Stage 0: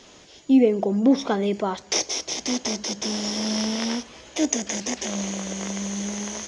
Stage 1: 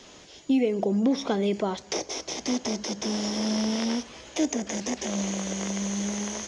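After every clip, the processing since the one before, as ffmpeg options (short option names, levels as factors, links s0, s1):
-filter_complex "[0:a]acrossover=split=800|1900[s0][s1][s2];[s0]acompressor=threshold=0.0891:ratio=4[s3];[s1]acompressor=threshold=0.00891:ratio=4[s4];[s2]acompressor=threshold=0.0224:ratio=4[s5];[s3][s4][s5]amix=inputs=3:normalize=0"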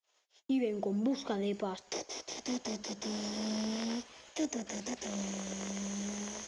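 -filter_complex "[0:a]agate=range=0.0112:threshold=0.00501:ratio=16:detection=peak,acrossover=split=500[s0][s1];[s0]aeval=exprs='sgn(val(0))*max(abs(val(0))-0.00251,0)':c=same[s2];[s2][s1]amix=inputs=2:normalize=0,volume=0.376"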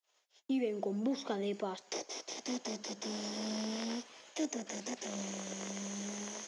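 -af "highpass=200,volume=0.891"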